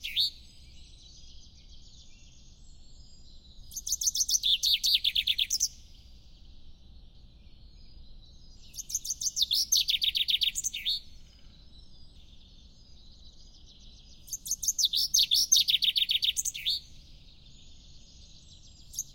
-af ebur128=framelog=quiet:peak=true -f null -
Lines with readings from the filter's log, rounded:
Integrated loudness:
  I:         -25.7 LUFS
  Threshold: -39.5 LUFS
Loudness range:
  LRA:        13.3 LU
  Threshold: -49.0 LUFS
  LRA low:   -38.5 LUFS
  LRA high:  -25.1 LUFS
True peak:
  Peak:      -10.5 dBFS